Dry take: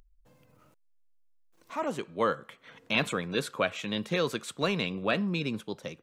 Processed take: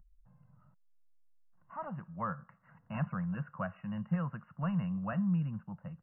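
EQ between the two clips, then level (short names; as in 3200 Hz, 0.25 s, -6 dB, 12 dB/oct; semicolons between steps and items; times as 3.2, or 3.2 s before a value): brick-wall FIR low-pass 2900 Hz; resonant low shelf 220 Hz +6.5 dB, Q 3; fixed phaser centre 1000 Hz, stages 4; -6.0 dB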